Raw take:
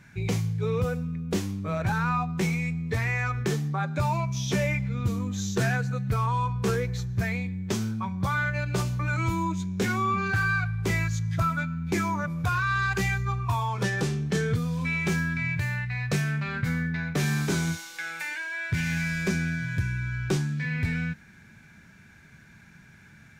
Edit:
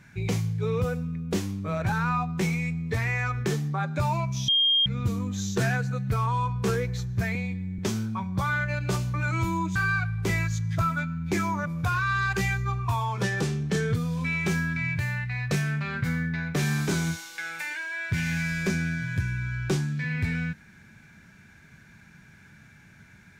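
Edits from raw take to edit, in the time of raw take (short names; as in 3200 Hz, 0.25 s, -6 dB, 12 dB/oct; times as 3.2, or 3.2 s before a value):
4.48–4.86 bleep 3220 Hz -18.5 dBFS
7.35–7.64 stretch 1.5×
9.61–10.36 cut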